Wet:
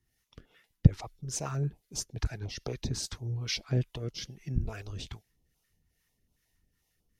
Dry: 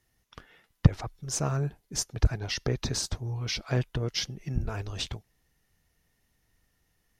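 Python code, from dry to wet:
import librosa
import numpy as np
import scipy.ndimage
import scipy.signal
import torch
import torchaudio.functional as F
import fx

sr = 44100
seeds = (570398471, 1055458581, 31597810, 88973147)

y = fx.harmonic_tremolo(x, sr, hz=2.4, depth_pct=70, crossover_hz=540.0)
y = fx.filter_held_notch(y, sr, hz=11.0, low_hz=560.0, high_hz=1800.0)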